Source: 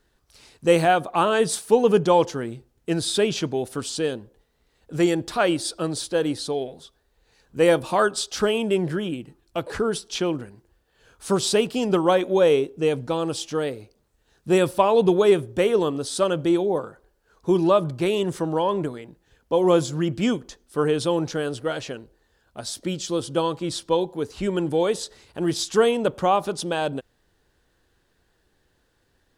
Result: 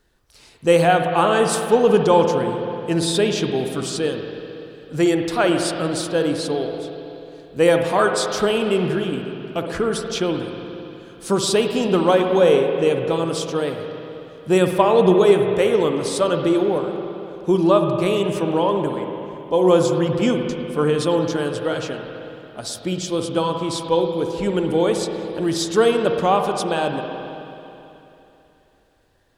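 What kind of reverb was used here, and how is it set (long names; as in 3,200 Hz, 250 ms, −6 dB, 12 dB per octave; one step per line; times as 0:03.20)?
spring reverb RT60 3.1 s, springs 54/60 ms, chirp 55 ms, DRR 4 dB
level +2 dB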